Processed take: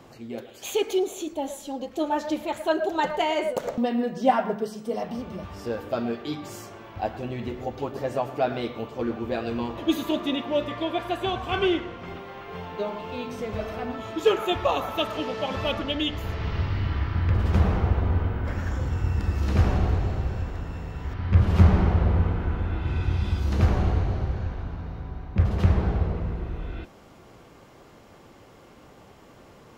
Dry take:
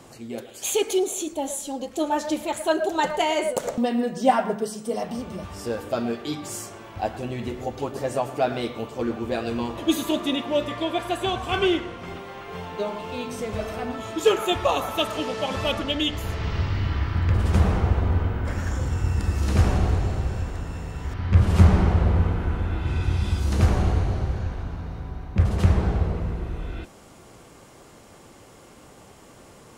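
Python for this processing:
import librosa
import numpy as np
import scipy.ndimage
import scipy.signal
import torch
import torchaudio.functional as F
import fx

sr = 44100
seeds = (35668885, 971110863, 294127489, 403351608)

y = fx.peak_eq(x, sr, hz=9000.0, db=-13.0, octaves=1.0)
y = y * librosa.db_to_amplitude(-1.5)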